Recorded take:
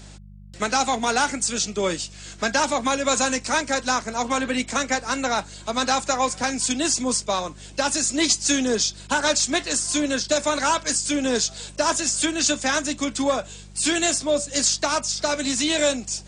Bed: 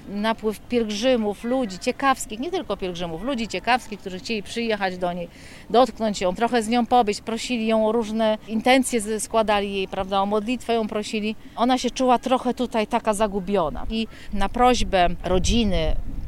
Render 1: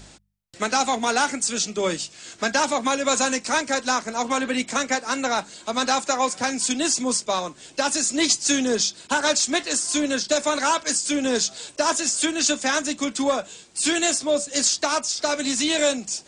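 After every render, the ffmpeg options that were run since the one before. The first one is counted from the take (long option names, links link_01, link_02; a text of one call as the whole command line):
ffmpeg -i in.wav -af "bandreject=frequency=50:width_type=h:width=4,bandreject=frequency=100:width_type=h:width=4,bandreject=frequency=150:width_type=h:width=4,bandreject=frequency=200:width_type=h:width=4" out.wav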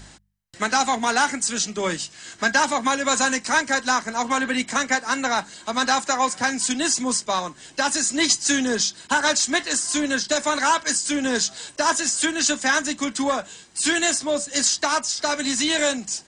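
ffmpeg -i in.wav -af "equalizer=frequency=1600:width_type=o:width=0.29:gain=8.5,aecho=1:1:1:0.3" out.wav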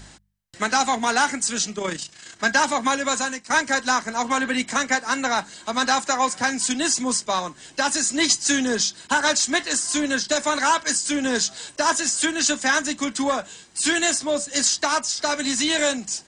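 ffmpeg -i in.wav -filter_complex "[0:a]asettb=1/sr,asplit=3[link_01][link_02][link_03];[link_01]atrim=end=1.754[link_04];[link_02]atrim=start=1.75:end=2.44,asetpts=PTS-STARTPTS,afade=type=in:duration=0.004:curve=qsin,afade=type=out:start_time=0.686:duration=0.004:curve=qsin,tremolo=f=29:d=0.571[link_05];[link_03]atrim=start=2.436[link_06];[link_04][link_05]acrossfade=duration=0.004:curve1=hsin:curve2=qsin[link_07];[link_07][link_06]acrossfade=duration=0.004:curve1=qsin:curve2=hsin,asplit=2[link_08][link_09];[link_08]atrim=end=3.5,asetpts=PTS-STARTPTS,afade=type=out:start_time=2.96:duration=0.54:silence=0.188365[link_10];[link_09]atrim=start=3.5,asetpts=PTS-STARTPTS,afade=type=in:duration=0.004:curve=hsin:silence=0.188365[link_11];[link_10][link_11]concat=n=2:v=0:a=1" out.wav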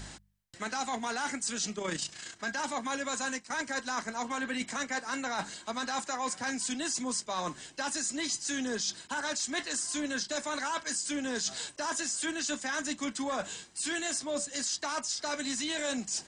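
ffmpeg -i in.wav -af "alimiter=limit=-14dB:level=0:latency=1:release=12,areverse,acompressor=threshold=-32dB:ratio=5,areverse" out.wav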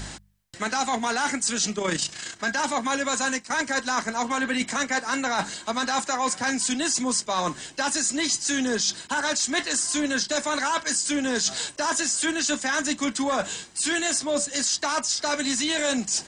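ffmpeg -i in.wav -af "volume=8.5dB" out.wav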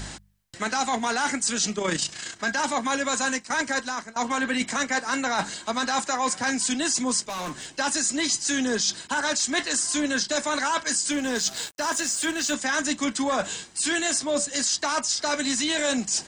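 ffmpeg -i in.wav -filter_complex "[0:a]asettb=1/sr,asplit=3[link_01][link_02][link_03];[link_01]atrim=end=7.274[link_04];[link_02]atrim=start=7.27:end=7.7,asetpts=PTS-STARTPTS,afade=type=in:duration=0.004:curve=qsin,afade=type=out:start_time=0.426:duration=0.004:curve=qsin,asoftclip=type=hard:threshold=-29.5dB[link_05];[link_03]atrim=start=7.696[link_06];[link_04][link_05]acrossfade=duration=0.004:curve1=hsin:curve2=qsin[link_07];[link_07][link_06]acrossfade=duration=0.004:curve1=qsin:curve2=hsin,asettb=1/sr,asplit=3[link_08][link_09][link_10];[link_08]atrim=end=11.124[link_11];[link_09]atrim=start=11.12:end=12.54,asetpts=PTS-STARTPTS,afade=type=in:duration=0.004:curve=qsin,afade=type=out:start_time=1.416:duration=0.004:curve=qsin,aeval=exprs='sgn(val(0))*max(abs(val(0))-0.01,0)':channel_layout=same[link_12];[link_10]atrim=start=12.536[link_13];[link_11][link_12]acrossfade=duration=0.004:curve1=hsin:curve2=qsin[link_14];[link_14][link_13]acrossfade=duration=0.004:curve1=qsin:curve2=hsin,asplit=2[link_15][link_16];[link_15]atrim=end=4.16,asetpts=PTS-STARTPTS,afade=type=out:start_time=3.72:duration=0.44:silence=0.1[link_17];[link_16]atrim=start=4.16,asetpts=PTS-STARTPTS,afade=type=in:duration=0.004:curve=hsin:silence=0.1[link_18];[link_17][link_18]concat=n=2:v=0:a=1" out.wav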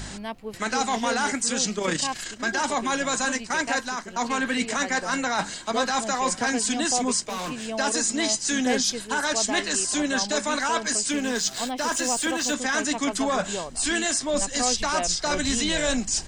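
ffmpeg -i in.wav -i bed.wav -filter_complex "[1:a]volume=-11.5dB[link_01];[0:a][link_01]amix=inputs=2:normalize=0" out.wav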